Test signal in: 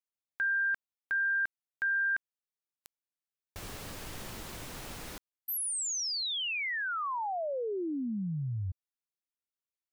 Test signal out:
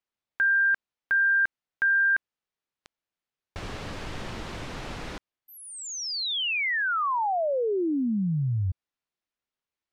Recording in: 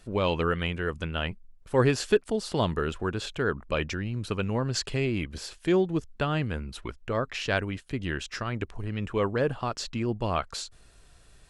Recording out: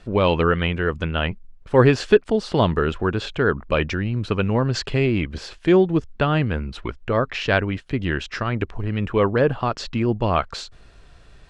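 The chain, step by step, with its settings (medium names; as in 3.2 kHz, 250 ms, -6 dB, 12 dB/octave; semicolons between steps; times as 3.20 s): Bessel low-pass 3.5 kHz, order 2; trim +8 dB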